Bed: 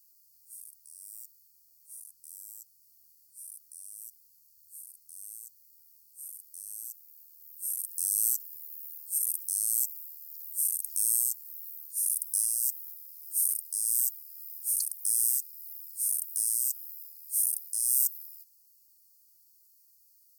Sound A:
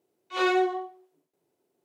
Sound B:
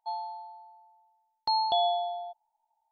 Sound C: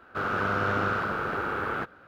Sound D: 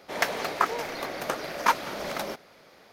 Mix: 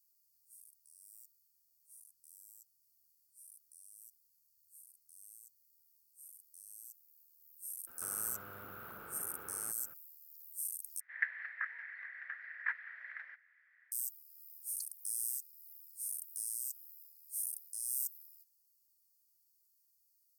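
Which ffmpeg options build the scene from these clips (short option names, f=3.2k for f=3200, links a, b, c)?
-filter_complex "[0:a]volume=-11.5dB[a];[3:a]acompressor=threshold=-40dB:ratio=6:attack=3.2:release=140:knee=1:detection=peak[b];[4:a]asuperpass=centerf=1800:order=4:qfactor=4.9[c];[a]asplit=2[d][e];[d]atrim=end=11.004[f];[c]atrim=end=2.92,asetpts=PTS-STARTPTS,volume=-2dB[g];[e]atrim=start=13.916[h];[b]atrim=end=2.07,asetpts=PTS-STARTPTS,volume=-9dB,afade=t=in:d=0.004:c=hsin,afade=t=out:st=2.066:d=0.004:c=hsin,adelay=7870[i];[f][g]acrossfade=d=0.004:c1=hsin:c2=hsin[j];[j][h]acrossfade=d=0.004:c1=hsin:c2=hsin[k];[k][i]amix=inputs=2:normalize=0"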